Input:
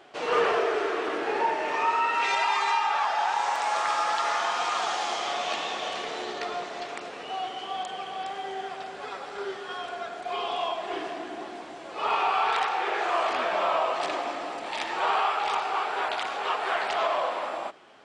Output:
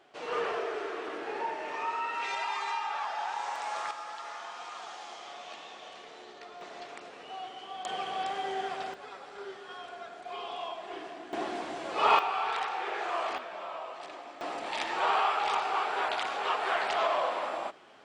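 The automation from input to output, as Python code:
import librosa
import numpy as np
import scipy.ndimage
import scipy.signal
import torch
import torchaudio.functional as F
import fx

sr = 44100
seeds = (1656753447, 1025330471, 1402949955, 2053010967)

y = fx.gain(x, sr, db=fx.steps((0.0, -8.5), (3.91, -15.0), (6.61, -8.5), (7.85, 0.5), (8.94, -8.5), (11.33, 3.5), (12.19, -6.5), (13.38, -14.5), (14.41, -2.0)))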